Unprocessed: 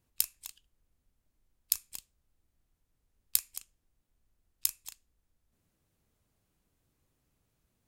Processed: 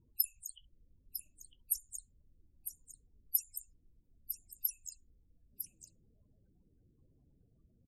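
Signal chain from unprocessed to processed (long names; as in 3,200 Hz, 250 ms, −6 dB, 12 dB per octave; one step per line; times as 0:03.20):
spectral peaks only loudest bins 16
single-tap delay 953 ms −9.5 dB
highs frequency-modulated by the lows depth 0.27 ms
level +9 dB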